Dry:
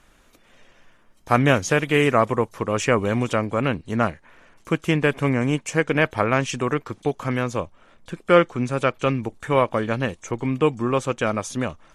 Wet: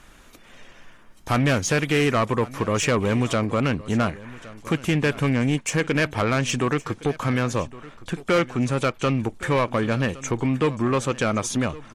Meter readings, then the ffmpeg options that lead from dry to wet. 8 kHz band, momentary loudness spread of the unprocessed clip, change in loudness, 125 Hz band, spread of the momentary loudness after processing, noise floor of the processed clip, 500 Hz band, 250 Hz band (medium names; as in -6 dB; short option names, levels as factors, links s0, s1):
+4.0 dB, 9 LU, -1.0 dB, +1.0 dB, 6 LU, -49 dBFS, -3.0 dB, +0.5 dB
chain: -filter_complex "[0:a]equalizer=f=560:w=1.5:g=-2.5,asplit=2[s0][s1];[s1]acompressor=threshold=0.0447:ratio=6,volume=1.19[s2];[s0][s2]amix=inputs=2:normalize=0,asoftclip=type=tanh:threshold=0.188,aecho=1:1:1114:0.112"